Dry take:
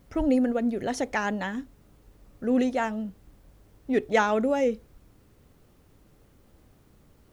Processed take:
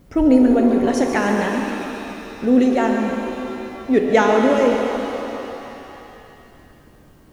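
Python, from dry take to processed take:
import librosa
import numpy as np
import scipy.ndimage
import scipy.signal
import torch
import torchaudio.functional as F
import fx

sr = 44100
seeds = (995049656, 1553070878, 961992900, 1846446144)

y = fx.peak_eq(x, sr, hz=270.0, db=4.5, octaves=2.0)
y = fx.echo_thinned(y, sr, ms=142, feedback_pct=73, hz=350.0, wet_db=-10.0)
y = fx.rev_shimmer(y, sr, seeds[0], rt60_s=2.8, semitones=7, shimmer_db=-8, drr_db=3.0)
y = y * librosa.db_to_amplitude(4.5)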